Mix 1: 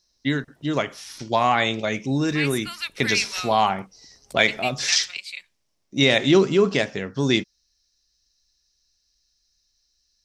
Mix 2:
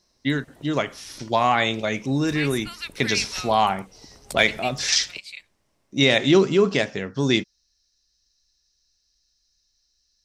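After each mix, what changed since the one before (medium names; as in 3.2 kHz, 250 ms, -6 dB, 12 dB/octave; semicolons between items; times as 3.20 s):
second voice -3.5 dB; background +11.0 dB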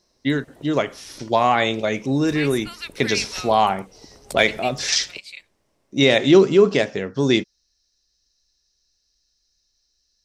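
master: add peaking EQ 450 Hz +5 dB 1.5 oct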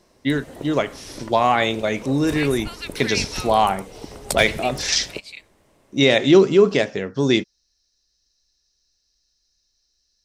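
background +11.0 dB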